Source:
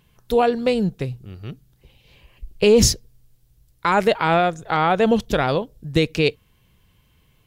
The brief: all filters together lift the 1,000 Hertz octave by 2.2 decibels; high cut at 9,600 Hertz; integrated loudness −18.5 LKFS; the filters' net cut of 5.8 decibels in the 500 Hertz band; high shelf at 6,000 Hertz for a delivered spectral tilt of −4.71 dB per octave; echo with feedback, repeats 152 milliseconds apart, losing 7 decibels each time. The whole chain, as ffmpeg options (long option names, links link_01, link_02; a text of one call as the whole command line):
ffmpeg -i in.wav -af "lowpass=9600,equalizer=frequency=500:width_type=o:gain=-8.5,equalizer=frequency=1000:width_type=o:gain=6.5,highshelf=frequency=6000:gain=-6.5,aecho=1:1:152|304|456|608|760:0.447|0.201|0.0905|0.0407|0.0183,volume=2dB" out.wav